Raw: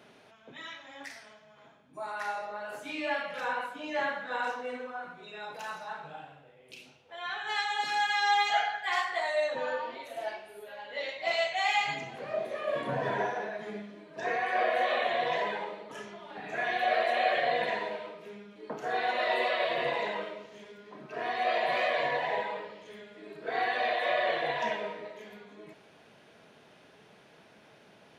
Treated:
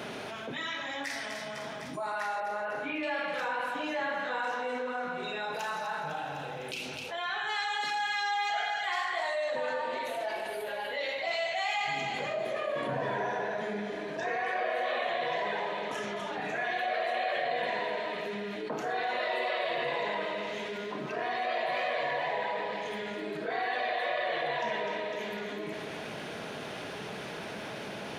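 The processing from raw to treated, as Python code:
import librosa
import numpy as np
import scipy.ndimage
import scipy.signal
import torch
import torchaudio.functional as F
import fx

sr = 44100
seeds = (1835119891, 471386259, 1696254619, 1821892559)

y = fx.lowpass(x, sr, hz=2700.0, slope=24, at=(2.4, 3.03))
y = fx.echo_split(y, sr, split_hz=1900.0, low_ms=153, high_ms=252, feedback_pct=52, wet_db=-10)
y = fx.env_flatten(y, sr, amount_pct=70)
y = F.gain(torch.from_numpy(y), -7.0).numpy()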